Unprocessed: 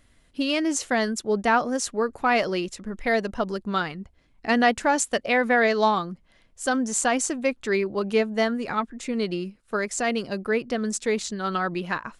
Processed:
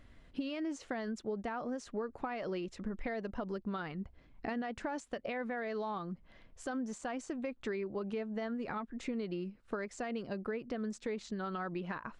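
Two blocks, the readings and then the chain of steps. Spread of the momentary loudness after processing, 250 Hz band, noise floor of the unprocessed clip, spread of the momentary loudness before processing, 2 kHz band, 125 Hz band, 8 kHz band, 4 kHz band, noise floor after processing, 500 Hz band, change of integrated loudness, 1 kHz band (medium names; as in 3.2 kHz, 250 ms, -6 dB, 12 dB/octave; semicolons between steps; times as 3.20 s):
3 LU, -11.5 dB, -61 dBFS, 9 LU, -18.0 dB, -9.0 dB, -24.5 dB, -19.5 dB, -61 dBFS, -14.0 dB, -15.0 dB, -17.0 dB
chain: peak limiter -17.5 dBFS, peak gain reduction 9.5 dB; compression 5:1, threshold -38 dBFS, peak gain reduction 15 dB; tape spacing loss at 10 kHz 20 dB; trim +2.5 dB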